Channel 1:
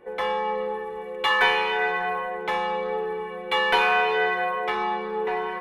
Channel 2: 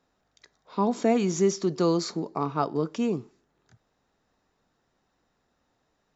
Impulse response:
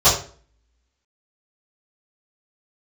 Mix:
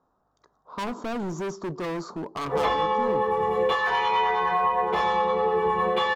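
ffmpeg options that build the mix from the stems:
-filter_complex "[0:a]acompressor=threshold=-31dB:ratio=6,acrossover=split=720[link_01][link_02];[link_01]aeval=exprs='val(0)*(1-0.7/2+0.7/2*cos(2*PI*9.7*n/s))':channel_layout=same[link_03];[link_02]aeval=exprs='val(0)*(1-0.7/2-0.7/2*cos(2*PI*9.7*n/s))':channel_layout=same[link_04];[link_03][link_04]amix=inputs=2:normalize=0,adelay=2450,volume=-1dB,asplit=2[link_05][link_06];[link_06]volume=-3.5dB[link_07];[1:a]highshelf=frequency=1600:width_type=q:width=3:gain=-12,volume=28.5dB,asoftclip=hard,volume=-28.5dB,volume=0.5dB[link_08];[2:a]atrim=start_sample=2205[link_09];[link_07][link_09]afir=irnorm=-1:irlink=0[link_10];[link_05][link_08][link_10]amix=inputs=3:normalize=0,alimiter=limit=-14.5dB:level=0:latency=1:release=287"

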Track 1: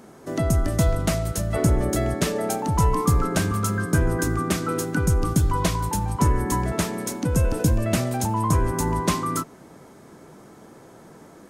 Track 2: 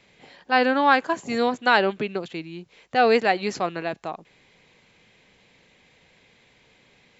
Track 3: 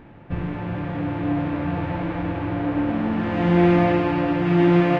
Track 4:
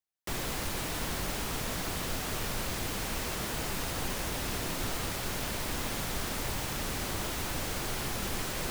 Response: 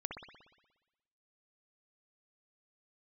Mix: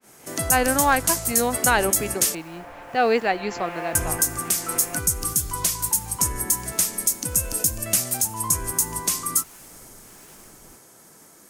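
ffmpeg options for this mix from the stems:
-filter_complex "[0:a]crystalizer=i=9:c=0,adynamicequalizer=threshold=0.0398:dfrequency=4300:dqfactor=0.7:tfrequency=4300:tqfactor=0.7:attack=5:release=100:ratio=0.375:range=3:mode=boostabove:tftype=highshelf,volume=-7.5dB,asplit=3[link_01][link_02][link_03];[link_01]atrim=end=2.35,asetpts=PTS-STARTPTS,afade=type=out:start_time=2.346:duration=0.004:curve=hsin[link_04];[link_02]atrim=start=2.35:end=3.95,asetpts=PTS-STARTPTS,volume=0[link_05];[link_03]atrim=start=3.95,asetpts=PTS-STARTPTS,afade=type=in:duration=0.004:curve=hsin[link_06];[link_04][link_05][link_06]concat=n=3:v=0:a=1[link_07];[1:a]volume=-1.5dB[link_08];[2:a]highpass=frequency=560:width=0.5412,highpass=frequency=560:width=1.3066,volume=-8.5dB[link_09];[3:a]acrossover=split=660[link_10][link_11];[link_10]aeval=exprs='val(0)*(1-0.7/2+0.7/2*cos(2*PI*1.4*n/s))':channel_layout=same[link_12];[link_11]aeval=exprs='val(0)*(1-0.7/2-0.7/2*cos(2*PI*1.4*n/s))':channel_layout=same[link_13];[link_12][link_13]amix=inputs=2:normalize=0,adelay=2050,volume=-14dB[link_14];[link_07][link_09]amix=inputs=2:normalize=0,alimiter=limit=-7dB:level=0:latency=1:release=390,volume=0dB[link_15];[link_08][link_14][link_15]amix=inputs=3:normalize=0,agate=range=-33dB:threshold=-44dB:ratio=3:detection=peak,equalizer=frequency=3700:width_type=o:width=0.48:gain=-3.5"

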